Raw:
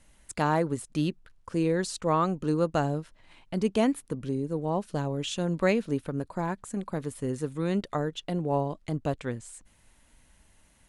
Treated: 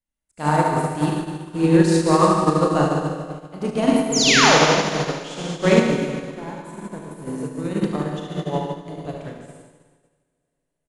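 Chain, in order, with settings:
sound drawn into the spectrogram fall, 0:04.12–0:04.58, 390–7,600 Hz −24 dBFS
on a send: repeating echo 73 ms, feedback 53%, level −7 dB
on the sum: four-comb reverb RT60 3.6 s, combs from 27 ms, DRR −4 dB
expander for the loud parts 2.5 to 1, over −42 dBFS
level +7 dB

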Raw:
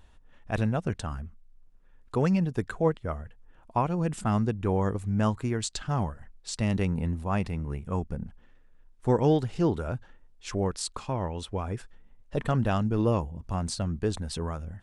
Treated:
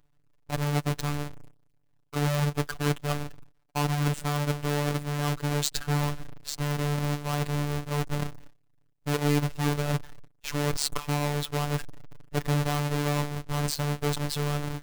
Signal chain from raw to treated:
each half-wave held at its own peak
reversed playback
downward compressor 6 to 1, threshold −30 dBFS, peak gain reduction 14 dB
reversed playback
noise gate with hold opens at −43 dBFS
phases set to zero 146 Hz
level +7 dB

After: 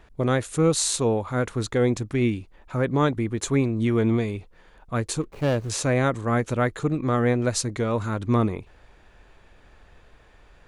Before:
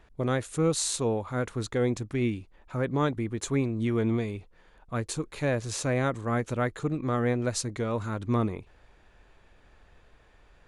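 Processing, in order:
0:05.21–0:05.70: running median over 25 samples
level +5 dB

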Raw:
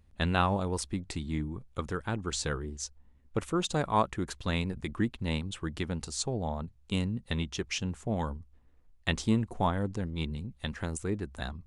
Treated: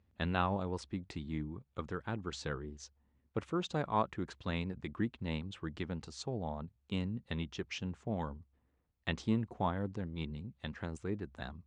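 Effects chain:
high-pass filter 81 Hz
high-frequency loss of the air 130 metres
level −5 dB

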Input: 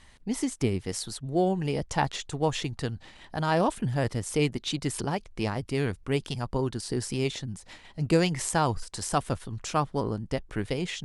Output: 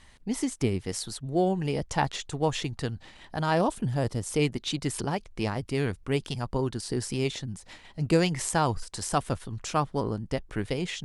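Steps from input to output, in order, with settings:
0:03.61–0:04.37: dynamic equaliser 2,000 Hz, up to −7 dB, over −47 dBFS, Q 1.2

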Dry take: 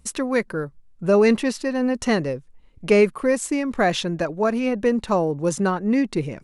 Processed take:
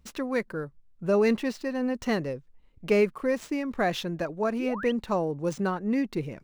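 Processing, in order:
running median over 5 samples
sound drawn into the spectrogram rise, 0:04.59–0:04.92, 270–3,400 Hz −31 dBFS
level −6.5 dB

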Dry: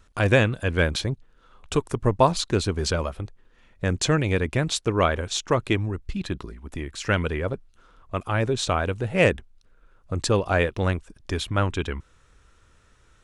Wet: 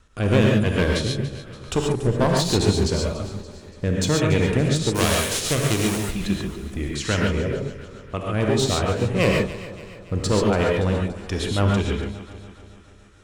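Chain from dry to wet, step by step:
0:04.94–0:06.00: spectral envelope flattened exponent 0.3
dynamic equaliser 1,600 Hz, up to −5 dB, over −38 dBFS, Q 0.88
rotating-speaker cabinet horn 1.1 Hz, later 6.3 Hz, at 0:07.67
asymmetric clip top −25 dBFS, bottom −12.5 dBFS
delay that swaps between a low-pass and a high-pass 143 ms, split 890 Hz, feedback 72%, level −12 dB
reverb whose tail is shaped and stops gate 160 ms rising, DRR −0.5 dB
level +3.5 dB

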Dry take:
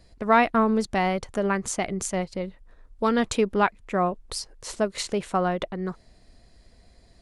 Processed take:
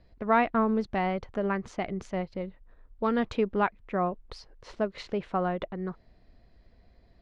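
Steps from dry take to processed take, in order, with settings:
high-frequency loss of the air 260 metres
level −3.5 dB

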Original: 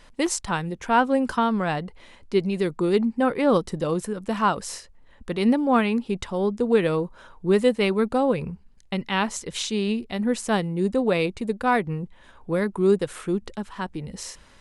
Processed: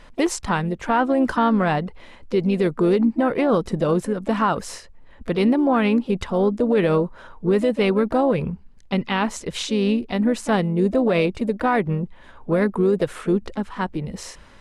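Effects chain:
pitch-shifted copies added +4 semitones −14 dB
high-shelf EQ 4,000 Hz −9.5 dB
brickwall limiter −16 dBFS, peak gain reduction 8 dB
level +5.5 dB

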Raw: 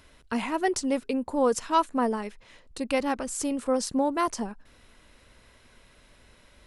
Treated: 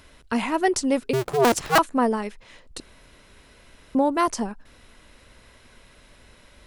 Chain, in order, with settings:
0:01.13–0:01.79: sub-harmonics by changed cycles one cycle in 2, inverted
0:02.80–0:03.95: fill with room tone
level +4.5 dB

